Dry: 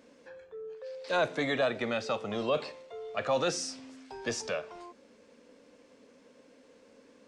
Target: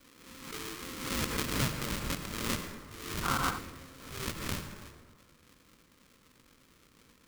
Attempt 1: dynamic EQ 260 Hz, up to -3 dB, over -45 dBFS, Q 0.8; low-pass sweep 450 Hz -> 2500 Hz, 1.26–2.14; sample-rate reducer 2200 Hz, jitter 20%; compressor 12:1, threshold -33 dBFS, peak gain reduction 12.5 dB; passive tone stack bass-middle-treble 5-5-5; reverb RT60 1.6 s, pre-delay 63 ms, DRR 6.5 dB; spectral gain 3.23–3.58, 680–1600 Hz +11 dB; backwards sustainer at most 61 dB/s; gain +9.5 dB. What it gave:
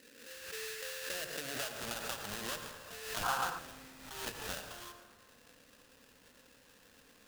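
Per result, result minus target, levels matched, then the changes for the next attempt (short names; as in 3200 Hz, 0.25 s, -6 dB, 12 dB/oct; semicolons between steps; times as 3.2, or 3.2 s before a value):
compressor: peak gain reduction +12.5 dB; sample-rate reducer: distortion -15 dB
remove: compressor 12:1, threshold -33 dBFS, peak gain reduction 12.5 dB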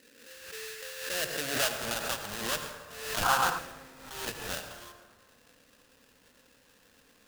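sample-rate reducer: distortion -15 dB
change: sample-rate reducer 790 Hz, jitter 20%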